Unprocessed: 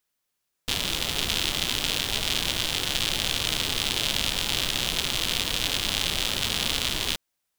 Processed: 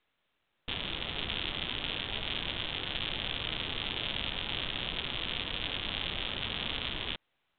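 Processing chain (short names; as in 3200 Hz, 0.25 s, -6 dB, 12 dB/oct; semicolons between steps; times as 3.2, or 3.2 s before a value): gain -7 dB; µ-law 64 kbps 8000 Hz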